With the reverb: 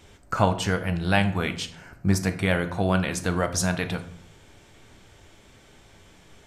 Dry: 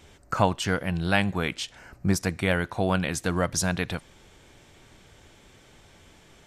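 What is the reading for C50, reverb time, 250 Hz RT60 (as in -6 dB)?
13.0 dB, 0.65 s, 0.85 s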